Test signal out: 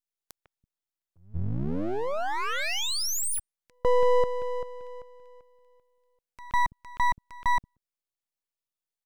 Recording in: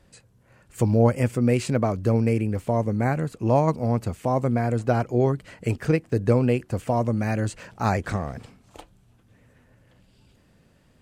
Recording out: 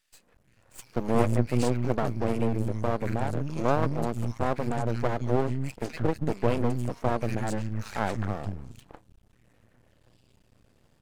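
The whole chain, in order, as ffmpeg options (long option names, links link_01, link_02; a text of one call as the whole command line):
ffmpeg -i in.wav -filter_complex "[0:a]acrossover=split=190|1800[link_01][link_02][link_03];[link_02]adelay=150[link_04];[link_01]adelay=330[link_05];[link_05][link_04][link_03]amix=inputs=3:normalize=0,aeval=exprs='max(val(0),0)':channel_layout=same" out.wav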